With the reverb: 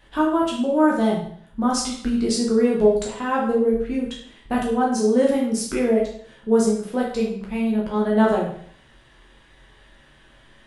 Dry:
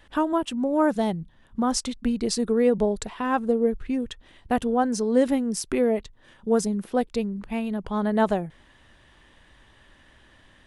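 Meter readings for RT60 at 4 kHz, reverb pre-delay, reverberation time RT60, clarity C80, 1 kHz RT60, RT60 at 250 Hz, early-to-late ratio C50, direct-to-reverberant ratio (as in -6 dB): 0.55 s, 9 ms, 0.55 s, 8.0 dB, 0.60 s, 0.60 s, 4.5 dB, -4.0 dB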